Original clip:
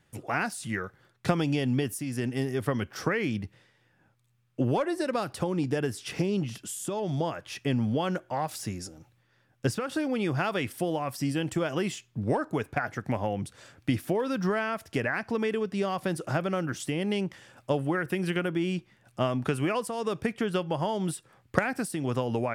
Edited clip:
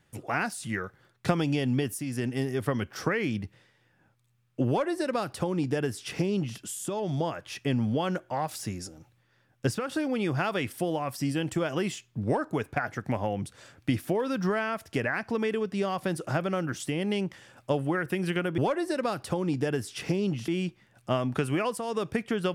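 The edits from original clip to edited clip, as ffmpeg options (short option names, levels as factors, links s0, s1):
-filter_complex "[0:a]asplit=3[s0][s1][s2];[s0]atrim=end=18.582[s3];[s1]atrim=start=4.678:end=6.582[s4];[s2]atrim=start=18.578[s5];[s3][s4]acrossfade=d=0.004:c1=hsin:c2=hsin[s6];[s6][s5]acrossfade=d=0.004:c1=hsin:c2=hsin"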